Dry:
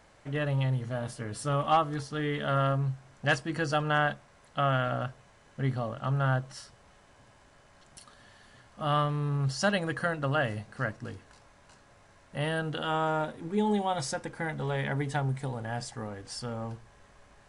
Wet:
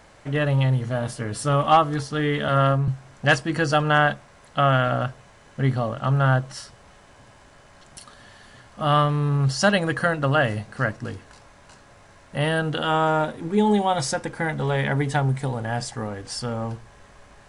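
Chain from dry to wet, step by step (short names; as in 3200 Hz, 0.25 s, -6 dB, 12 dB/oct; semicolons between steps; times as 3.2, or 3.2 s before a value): 2.48–2.88 three-band expander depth 70%; gain +8 dB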